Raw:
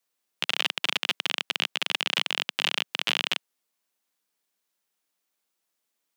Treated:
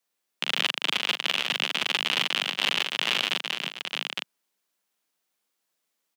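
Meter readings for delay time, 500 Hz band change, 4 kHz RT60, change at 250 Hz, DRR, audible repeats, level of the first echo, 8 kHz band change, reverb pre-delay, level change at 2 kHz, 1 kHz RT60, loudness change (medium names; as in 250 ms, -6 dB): 41 ms, +2.5 dB, no reverb, +2.5 dB, no reverb, 4, -5.0 dB, +1.0 dB, no reverb, +2.0 dB, no reverb, +1.0 dB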